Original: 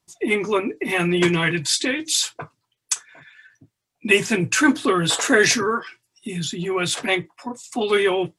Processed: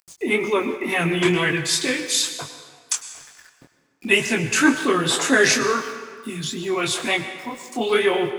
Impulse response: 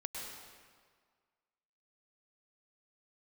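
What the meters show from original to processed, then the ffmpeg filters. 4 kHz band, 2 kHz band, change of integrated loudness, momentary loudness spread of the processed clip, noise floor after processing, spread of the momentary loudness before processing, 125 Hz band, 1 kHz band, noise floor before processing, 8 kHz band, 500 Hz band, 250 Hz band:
0.0 dB, +0.5 dB, 0.0 dB, 15 LU, -63 dBFS, 11 LU, -2.0 dB, +0.5 dB, -80 dBFS, 0.0 dB, 0.0 dB, -0.5 dB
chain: -filter_complex "[0:a]acompressor=mode=upward:threshold=0.01:ratio=2.5,aeval=exprs='val(0)*gte(abs(val(0)),0.00794)':c=same,flanger=delay=20:depth=7.2:speed=2.1,asplit=2[s0][s1];[1:a]atrim=start_sample=2205,lowshelf=f=140:g=-9[s2];[s1][s2]afir=irnorm=-1:irlink=0,volume=0.596[s3];[s0][s3]amix=inputs=2:normalize=0"

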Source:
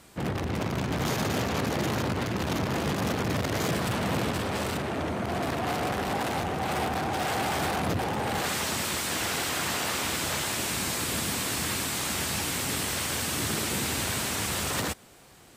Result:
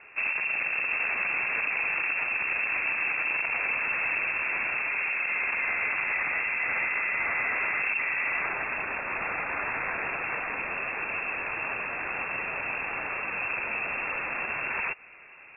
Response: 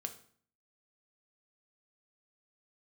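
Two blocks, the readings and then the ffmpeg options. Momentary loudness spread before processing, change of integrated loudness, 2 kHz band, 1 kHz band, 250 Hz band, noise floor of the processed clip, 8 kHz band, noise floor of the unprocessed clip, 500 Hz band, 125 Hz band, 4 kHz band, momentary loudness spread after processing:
2 LU, +1.0 dB, +8.0 dB, -4.0 dB, -17.0 dB, -49 dBFS, under -40 dB, -53 dBFS, -9.0 dB, -21.5 dB, under -20 dB, 4 LU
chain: -af "acompressor=threshold=0.0224:ratio=2.5,lowpass=f=2400:t=q:w=0.5098,lowpass=f=2400:t=q:w=0.6013,lowpass=f=2400:t=q:w=0.9,lowpass=f=2400:t=q:w=2.563,afreqshift=-2800,acontrast=31"

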